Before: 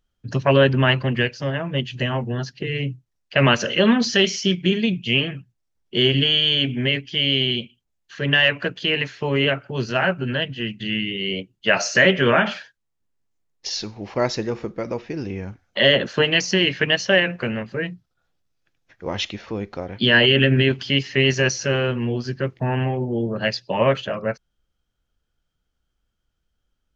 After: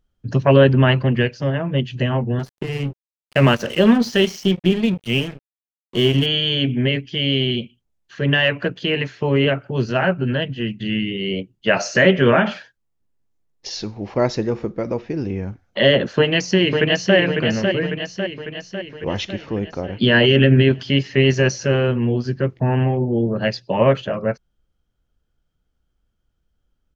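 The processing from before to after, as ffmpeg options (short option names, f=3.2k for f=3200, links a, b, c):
-filter_complex "[0:a]asettb=1/sr,asplit=3[a][b][c];[a]atrim=end=2.394[d];[b]atrim=start=2.39:end=6.26,asetpts=PTS-STARTPTS,afade=t=in:d=0.004:c=qsin,afade=t=out:st=3.866:d=0.004:c=qsin,aeval=exprs='sgn(val(0))*max(abs(val(0))-0.0237,0)':c=same[e];[c]atrim=start=6.256[f];[d][e]acrossfade=d=0.004:c1=hsin:c2=qsin[g];[g][f]acrossfade=d=0.004:c1=qsin:c2=hsin,asplit=2[h][i];[i]afade=t=in:st=16.16:d=0.01,afade=t=out:st=17.16:d=0.01,aecho=0:1:550|1100|1650|2200|2750|3300|3850|4400:0.562341|0.337405|0.202443|0.121466|0.0728794|0.0437277|0.0262366|0.015742[j];[h][j]amix=inputs=2:normalize=0,tiltshelf=f=970:g=4,volume=1dB"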